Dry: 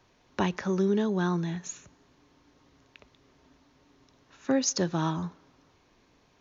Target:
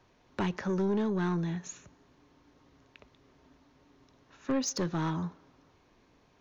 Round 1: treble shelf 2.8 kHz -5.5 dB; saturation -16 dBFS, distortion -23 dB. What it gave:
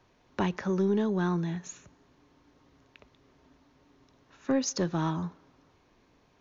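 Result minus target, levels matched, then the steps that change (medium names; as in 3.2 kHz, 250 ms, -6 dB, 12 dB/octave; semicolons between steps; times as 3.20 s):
saturation: distortion -11 dB
change: saturation -24 dBFS, distortion -12 dB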